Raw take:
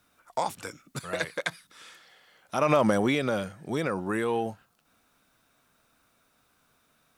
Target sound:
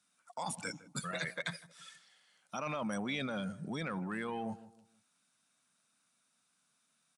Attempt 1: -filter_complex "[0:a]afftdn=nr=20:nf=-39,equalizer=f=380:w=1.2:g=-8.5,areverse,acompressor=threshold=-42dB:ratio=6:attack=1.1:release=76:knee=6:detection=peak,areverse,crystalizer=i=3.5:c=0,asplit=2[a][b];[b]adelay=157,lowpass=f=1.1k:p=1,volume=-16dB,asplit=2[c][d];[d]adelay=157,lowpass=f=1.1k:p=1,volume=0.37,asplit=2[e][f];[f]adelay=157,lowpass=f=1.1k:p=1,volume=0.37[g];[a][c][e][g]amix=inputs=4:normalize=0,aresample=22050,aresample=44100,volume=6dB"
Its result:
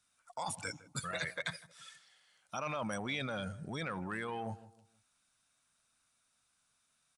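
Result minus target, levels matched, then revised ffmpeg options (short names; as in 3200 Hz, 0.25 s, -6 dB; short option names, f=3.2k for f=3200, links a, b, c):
250 Hz band -3.5 dB
-filter_complex "[0:a]afftdn=nr=20:nf=-39,highpass=f=190:t=q:w=2,equalizer=f=380:w=1.2:g=-8.5,areverse,acompressor=threshold=-42dB:ratio=6:attack=1.1:release=76:knee=6:detection=peak,areverse,crystalizer=i=3.5:c=0,asplit=2[a][b];[b]adelay=157,lowpass=f=1.1k:p=1,volume=-16dB,asplit=2[c][d];[d]adelay=157,lowpass=f=1.1k:p=1,volume=0.37,asplit=2[e][f];[f]adelay=157,lowpass=f=1.1k:p=1,volume=0.37[g];[a][c][e][g]amix=inputs=4:normalize=0,aresample=22050,aresample=44100,volume=6dB"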